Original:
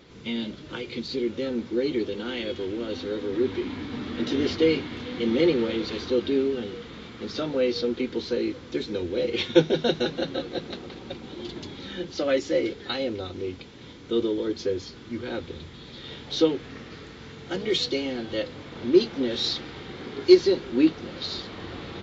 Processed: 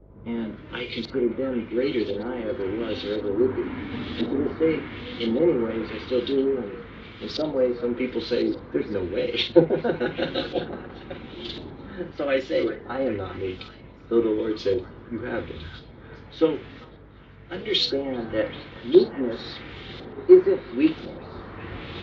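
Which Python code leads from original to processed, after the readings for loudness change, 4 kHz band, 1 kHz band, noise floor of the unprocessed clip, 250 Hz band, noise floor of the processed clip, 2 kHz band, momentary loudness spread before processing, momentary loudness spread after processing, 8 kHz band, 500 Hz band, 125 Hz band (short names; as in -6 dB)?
+1.5 dB, -1.0 dB, +2.5 dB, -44 dBFS, +1.0 dB, -46 dBFS, +1.0 dB, 16 LU, 18 LU, n/a, +2.0 dB, +1.0 dB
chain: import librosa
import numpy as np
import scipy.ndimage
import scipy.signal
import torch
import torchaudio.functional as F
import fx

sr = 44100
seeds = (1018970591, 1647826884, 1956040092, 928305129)

y = fx.rider(x, sr, range_db=3, speed_s=0.5)
y = fx.dmg_buzz(y, sr, base_hz=50.0, harmonics=13, level_db=-47.0, tilt_db=-4, odd_only=False)
y = fx.filter_lfo_lowpass(y, sr, shape='saw_up', hz=0.95, low_hz=700.0, high_hz=4200.0, q=1.5)
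y = fx.doubler(y, sr, ms=49.0, db=-11.0)
y = fx.echo_stepped(y, sr, ms=392, hz=1300.0, octaves=0.7, feedback_pct=70, wet_db=-7.5)
y = fx.band_widen(y, sr, depth_pct=40)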